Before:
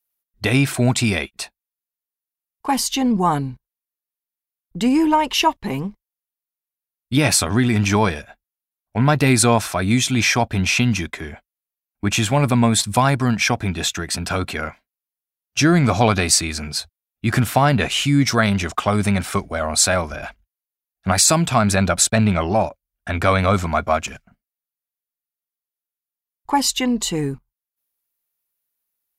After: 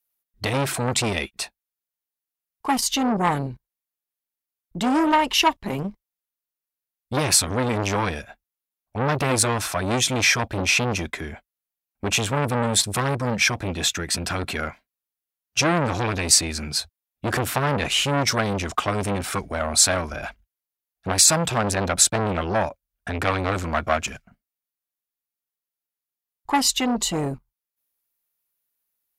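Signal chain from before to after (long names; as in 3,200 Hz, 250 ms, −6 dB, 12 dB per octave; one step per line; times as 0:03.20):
saturating transformer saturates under 1,800 Hz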